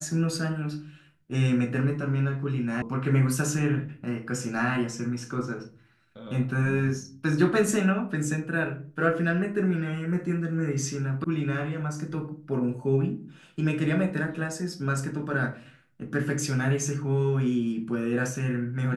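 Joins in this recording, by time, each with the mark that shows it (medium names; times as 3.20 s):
2.82 s: sound stops dead
11.24 s: sound stops dead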